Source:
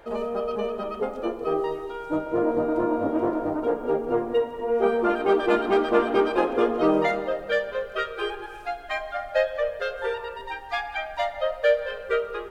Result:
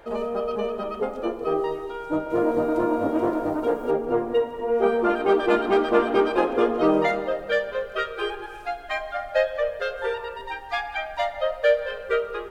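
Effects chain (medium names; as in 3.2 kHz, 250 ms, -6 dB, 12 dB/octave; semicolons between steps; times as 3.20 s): 2.30–3.91 s: treble shelf 3.3 kHz +9.5 dB; trim +1 dB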